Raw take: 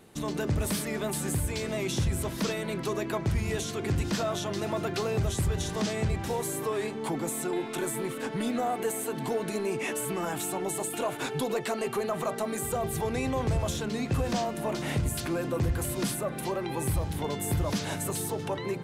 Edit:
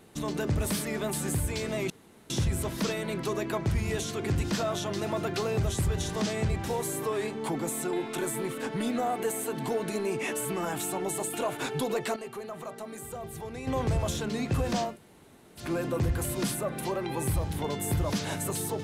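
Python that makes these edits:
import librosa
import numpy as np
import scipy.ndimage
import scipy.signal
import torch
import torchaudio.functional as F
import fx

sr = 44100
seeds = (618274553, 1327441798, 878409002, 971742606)

y = fx.edit(x, sr, fx.insert_room_tone(at_s=1.9, length_s=0.4),
    fx.clip_gain(start_s=11.76, length_s=1.51, db=-9.0),
    fx.room_tone_fill(start_s=14.51, length_s=0.72, crossfade_s=0.16), tone=tone)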